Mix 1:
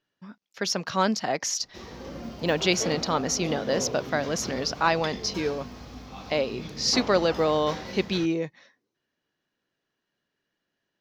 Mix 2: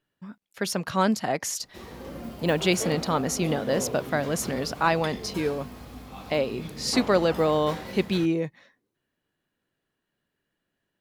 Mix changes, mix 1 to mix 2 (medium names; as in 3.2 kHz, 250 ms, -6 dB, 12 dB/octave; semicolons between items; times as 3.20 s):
speech: add bass shelf 140 Hz +9 dB; master: add resonant high shelf 7.3 kHz +8.5 dB, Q 3